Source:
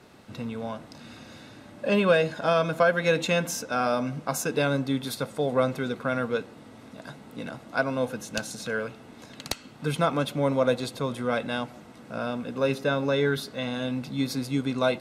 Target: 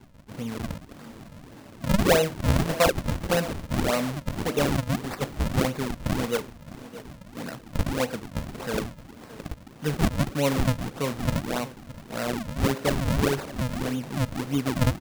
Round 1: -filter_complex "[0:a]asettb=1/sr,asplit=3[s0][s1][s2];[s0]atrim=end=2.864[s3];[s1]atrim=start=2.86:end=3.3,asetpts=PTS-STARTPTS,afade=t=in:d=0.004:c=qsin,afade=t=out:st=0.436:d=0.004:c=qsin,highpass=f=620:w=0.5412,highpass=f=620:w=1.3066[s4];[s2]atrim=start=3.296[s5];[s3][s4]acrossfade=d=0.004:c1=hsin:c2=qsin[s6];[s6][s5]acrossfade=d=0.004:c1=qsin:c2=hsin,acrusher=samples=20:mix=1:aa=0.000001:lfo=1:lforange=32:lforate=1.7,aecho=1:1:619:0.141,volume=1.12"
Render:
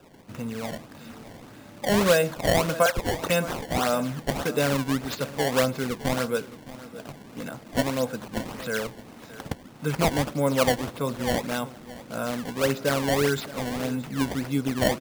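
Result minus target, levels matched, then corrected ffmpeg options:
decimation with a swept rate: distortion -10 dB
-filter_complex "[0:a]asettb=1/sr,asplit=3[s0][s1][s2];[s0]atrim=end=2.864[s3];[s1]atrim=start=2.86:end=3.3,asetpts=PTS-STARTPTS,afade=t=in:d=0.004:c=qsin,afade=t=out:st=0.436:d=0.004:c=qsin,highpass=f=620:w=0.5412,highpass=f=620:w=1.3066[s4];[s2]atrim=start=3.296[s5];[s3][s4]acrossfade=d=0.004:c1=hsin:c2=qsin[s6];[s6][s5]acrossfade=d=0.004:c1=qsin:c2=hsin,acrusher=samples=66:mix=1:aa=0.000001:lfo=1:lforange=106:lforate=1.7,aecho=1:1:619:0.141,volume=1.12"

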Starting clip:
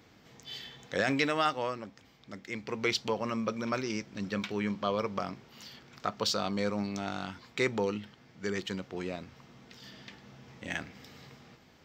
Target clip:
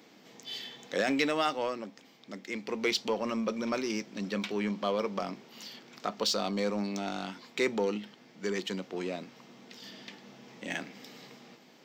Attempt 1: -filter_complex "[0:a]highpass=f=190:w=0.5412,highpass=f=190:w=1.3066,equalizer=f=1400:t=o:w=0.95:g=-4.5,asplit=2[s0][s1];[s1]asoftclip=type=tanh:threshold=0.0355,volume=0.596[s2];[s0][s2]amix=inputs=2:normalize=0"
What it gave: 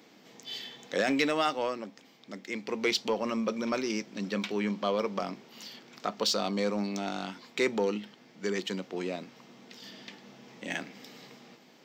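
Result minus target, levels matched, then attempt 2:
saturation: distortion -5 dB
-filter_complex "[0:a]highpass=f=190:w=0.5412,highpass=f=190:w=1.3066,equalizer=f=1400:t=o:w=0.95:g=-4.5,asplit=2[s0][s1];[s1]asoftclip=type=tanh:threshold=0.0141,volume=0.596[s2];[s0][s2]amix=inputs=2:normalize=0"

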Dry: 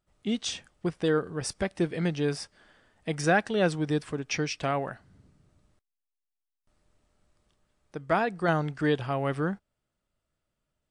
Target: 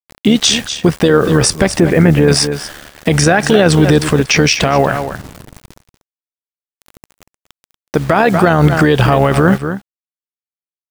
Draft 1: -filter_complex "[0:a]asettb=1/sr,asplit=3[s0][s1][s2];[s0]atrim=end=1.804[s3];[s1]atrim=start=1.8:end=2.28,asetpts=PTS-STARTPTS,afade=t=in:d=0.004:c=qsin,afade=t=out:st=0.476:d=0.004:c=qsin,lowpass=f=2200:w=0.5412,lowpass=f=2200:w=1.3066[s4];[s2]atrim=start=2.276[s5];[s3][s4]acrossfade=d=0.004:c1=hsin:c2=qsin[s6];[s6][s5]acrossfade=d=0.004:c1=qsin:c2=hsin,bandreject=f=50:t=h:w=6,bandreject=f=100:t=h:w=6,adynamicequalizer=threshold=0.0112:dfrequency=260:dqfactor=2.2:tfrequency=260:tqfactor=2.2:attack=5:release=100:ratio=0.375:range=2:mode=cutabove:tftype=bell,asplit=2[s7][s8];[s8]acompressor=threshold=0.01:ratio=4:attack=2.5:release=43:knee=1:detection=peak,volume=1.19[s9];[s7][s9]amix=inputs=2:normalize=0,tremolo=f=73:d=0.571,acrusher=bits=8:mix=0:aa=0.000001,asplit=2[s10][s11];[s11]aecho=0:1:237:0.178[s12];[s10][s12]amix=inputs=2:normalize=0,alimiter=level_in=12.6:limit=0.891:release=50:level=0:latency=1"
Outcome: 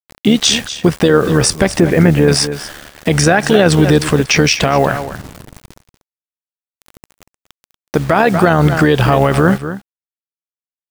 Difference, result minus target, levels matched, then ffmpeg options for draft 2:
compression: peak gain reduction +9 dB
-filter_complex "[0:a]asettb=1/sr,asplit=3[s0][s1][s2];[s0]atrim=end=1.804[s3];[s1]atrim=start=1.8:end=2.28,asetpts=PTS-STARTPTS,afade=t=in:d=0.004:c=qsin,afade=t=out:st=0.476:d=0.004:c=qsin,lowpass=f=2200:w=0.5412,lowpass=f=2200:w=1.3066[s4];[s2]atrim=start=2.276[s5];[s3][s4]acrossfade=d=0.004:c1=hsin:c2=qsin[s6];[s6][s5]acrossfade=d=0.004:c1=qsin:c2=hsin,bandreject=f=50:t=h:w=6,bandreject=f=100:t=h:w=6,adynamicequalizer=threshold=0.0112:dfrequency=260:dqfactor=2.2:tfrequency=260:tqfactor=2.2:attack=5:release=100:ratio=0.375:range=2:mode=cutabove:tftype=bell,asplit=2[s7][s8];[s8]acompressor=threshold=0.0398:ratio=4:attack=2.5:release=43:knee=1:detection=peak,volume=1.19[s9];[s7][s9]amix=inputs=2:normalize=0,tremolo=f=73:d=0.571,acrusher=bits=8:mix=0:aa=0.000001,asplit=2[s10][s11];[s11]aecho=0:1:237:0.178[s12];[s10][s12]amix=inputs=2:normalize=0,alimiter=level_in=12.6:limit=0.891:release=50:level=0:latency=1"

